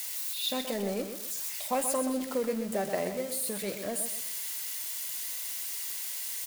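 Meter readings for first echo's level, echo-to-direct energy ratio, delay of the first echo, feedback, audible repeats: -8.0 dB, -7.5 dB, 0.127 s, 33%, 3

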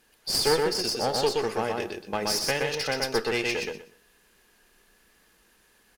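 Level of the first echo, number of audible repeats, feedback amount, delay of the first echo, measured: -3.0 dB, 3, 19%, 0.123 s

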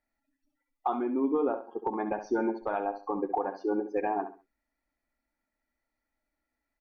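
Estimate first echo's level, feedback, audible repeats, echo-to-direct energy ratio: -10.0 dB, 27%, 3, -9.5 dB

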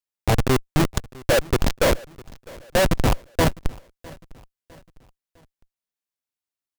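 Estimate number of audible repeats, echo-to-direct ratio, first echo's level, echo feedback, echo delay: 2, -21.5 dB, -22.5 dB, 43%, 0.655 s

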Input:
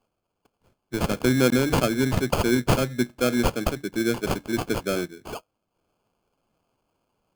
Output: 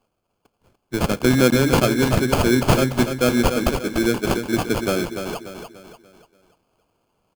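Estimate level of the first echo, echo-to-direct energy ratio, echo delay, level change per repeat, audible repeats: -7.5 dB, -6.5 dB, 0.292 s, -7.5 dB, 4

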